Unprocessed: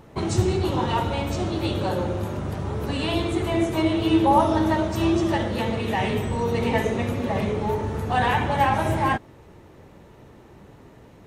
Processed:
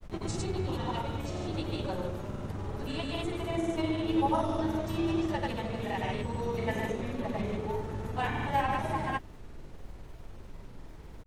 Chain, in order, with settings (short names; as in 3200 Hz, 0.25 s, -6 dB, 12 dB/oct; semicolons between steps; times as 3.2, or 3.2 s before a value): added noise brown -35 dBFS; grains, pitch spread up and down by 0 st; gain -8 dB